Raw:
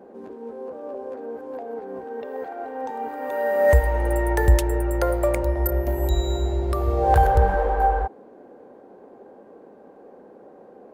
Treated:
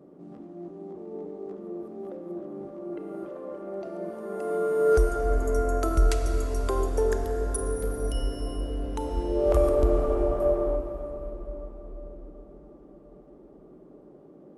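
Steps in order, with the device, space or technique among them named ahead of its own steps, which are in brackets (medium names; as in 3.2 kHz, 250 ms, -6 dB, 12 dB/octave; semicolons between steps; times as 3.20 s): slowed and reverbed (tape speed -25%; reverberation RT60 4.6 s, pre-delay 26 ms, DRR 4.5 dB); trim -5.5 dB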